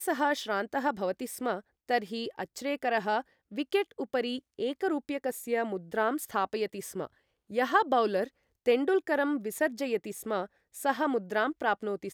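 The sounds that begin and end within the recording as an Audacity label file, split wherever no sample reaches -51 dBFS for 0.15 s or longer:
1.890000	3.220000	sound
3.510000	4.390000	sound
4.590000	7.070000	sound
7.500000	8.290000	sound
8.660000	10.460000	sound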